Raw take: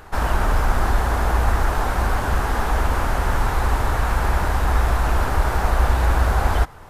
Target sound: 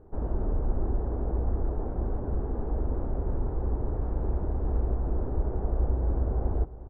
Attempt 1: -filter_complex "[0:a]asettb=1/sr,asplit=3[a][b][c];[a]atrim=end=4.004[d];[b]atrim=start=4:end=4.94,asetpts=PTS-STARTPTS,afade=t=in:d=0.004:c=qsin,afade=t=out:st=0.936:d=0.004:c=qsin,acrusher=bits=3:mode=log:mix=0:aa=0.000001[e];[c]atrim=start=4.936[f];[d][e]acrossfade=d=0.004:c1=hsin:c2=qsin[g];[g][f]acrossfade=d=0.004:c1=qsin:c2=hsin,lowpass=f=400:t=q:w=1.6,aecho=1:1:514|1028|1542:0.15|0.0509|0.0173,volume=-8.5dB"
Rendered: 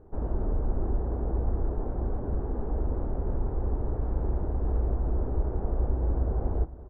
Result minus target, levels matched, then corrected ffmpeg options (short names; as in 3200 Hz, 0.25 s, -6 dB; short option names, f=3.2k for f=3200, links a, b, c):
echo 0.157 s late
-filter_complex "[0:a]asettb=1/sr,asplit=3[a][b][c];[a]atrim=end=4.004[d];[b]atrim=start=4:end=4.94,asetpts=PTS-STARTPTS,afade=t=in:d=0.004:c=qsin,afade=t=out:st=0.936:d=0.004:c=qsin,acrusher=bits=3:mode=log:mix=0:aa=0.000001[e];[c]atrim=start=4.936[f];[d][e]acrossfade=d=0.004:c1=hsin:c2=qsin[g];[g][f]acrossfade=d=0.004:c1=qsin:c2=hsin,lowpass=f=400:t=q:w=1.6,aecho=1:1:357|714|1071:0.15|0.0509|0.0173,volume=-8.5dB"